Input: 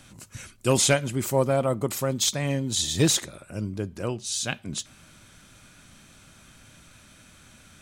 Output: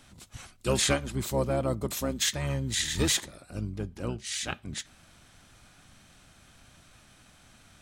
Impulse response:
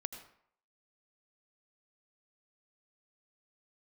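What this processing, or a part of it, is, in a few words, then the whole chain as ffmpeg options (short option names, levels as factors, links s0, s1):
octave pedal: -filter_complex "[0:a]asettb=1/sr,asplit=3[s0][s1][s2];[s0]atrim=end=1.714[s3];[s1]atrim=start=1.71:end=3.59,asetpts=PTS-STARTPTS,afade=t=in:d=0.004:c=qsin,afade=t=out:st=1.876:d=0.004:c=qsin,highshelf=f=8400:g=4.5[s4];[s2]atrim=start=3.586[s5];[s3][s4]acrossfade=d=0.004:c1=hsin:c2=qsin[s6];[s6][s5]acrossfade=d=0.004:c1=qsin:c2=hsin,asplit=2[s7][s8];[s8]asetrate=22050,aresample=44100,atempo=2,volume=0.708[s9];[s7][s9]amix=inputs=2:normalize=0,volume=0.501"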